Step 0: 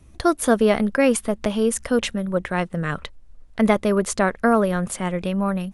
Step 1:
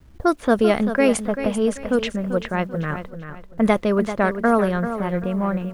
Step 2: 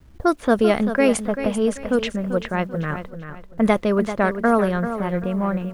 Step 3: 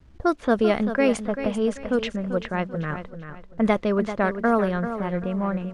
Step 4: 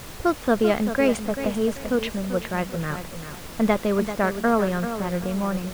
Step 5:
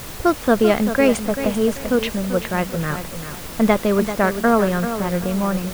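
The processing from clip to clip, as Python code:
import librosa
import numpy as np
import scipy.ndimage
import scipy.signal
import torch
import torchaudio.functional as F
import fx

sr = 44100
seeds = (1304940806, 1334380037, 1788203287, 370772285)

y1 = fx.env_lowpass(x, sr, base_hz=380.0, full_db=-13.0)
y1 = fx.quant_dither(y1, sr, seeds[0], bits=10, dither='none')
y1 = fx.echo_feedback(y1, sr, ms=389, feedback_pct=31, wet_db=-10.0)
y2 = y1
y3 = scipy.signal.sosfilt(scipy.signal.butter(2, 6600.0, 'lowpass', fs=sr, output='sos'), y2)
y3 = F.gain(torch.from_numpy(y3), -3.0).numpy()
y4 = fx.dmg_noise_colour(y3, sr, seeds[1], colour='pink', level_db=-39.0)
y5 = fx.high_shelf(y4, sr, hz=10000.0, db=5.5)
y5 = F.gain(torch.from_numpy(y5), 4.5).numpy()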